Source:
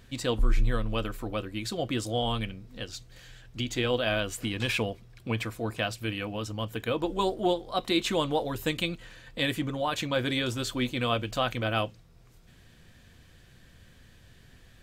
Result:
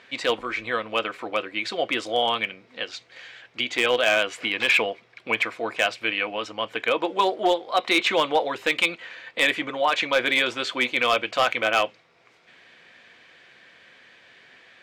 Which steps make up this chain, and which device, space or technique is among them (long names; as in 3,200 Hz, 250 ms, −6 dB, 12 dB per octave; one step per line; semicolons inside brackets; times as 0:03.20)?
megaphone (band-pass filter 510–3,700 Hz; parametric band 2,200 Hz +7 dB 0.39 octaves; hard clipping −21 dBFS, distortion −18 dB)
level +9 dB